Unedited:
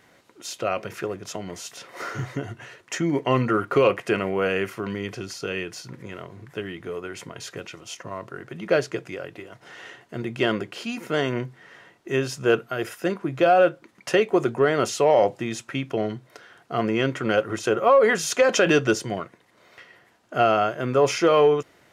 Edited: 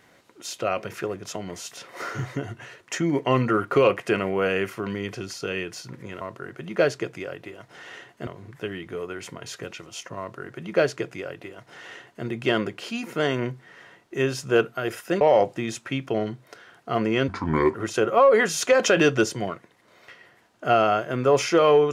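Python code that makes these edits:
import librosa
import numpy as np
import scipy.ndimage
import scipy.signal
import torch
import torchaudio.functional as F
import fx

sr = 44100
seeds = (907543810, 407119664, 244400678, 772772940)

y = fx.edit(x, sr, fx.duplicate(start_s=8.13, length_s=2.06, to_s=6.21),
    fx.cut(start_s=13.15, length_s=1.89),
    fx.speed_span(start_s=17.11, length_s=0.33, speed=0.71), tone=tone)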